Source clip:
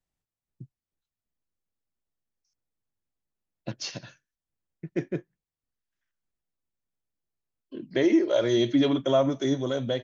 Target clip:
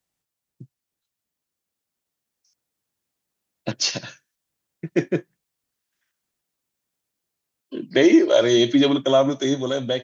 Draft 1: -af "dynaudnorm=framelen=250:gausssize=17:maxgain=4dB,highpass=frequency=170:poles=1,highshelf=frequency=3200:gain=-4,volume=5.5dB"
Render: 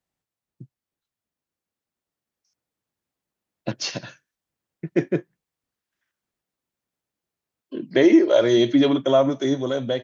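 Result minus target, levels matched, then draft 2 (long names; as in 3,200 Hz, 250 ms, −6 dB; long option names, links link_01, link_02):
8,000 Hz band −6.5 dB
-af "dynaudnorm=framelen=250:gausssize=17:maxgain=4dB,highpass=frequency=170:poles=1,highshelf=frequency=3200:gain=5,volume=5.5dB"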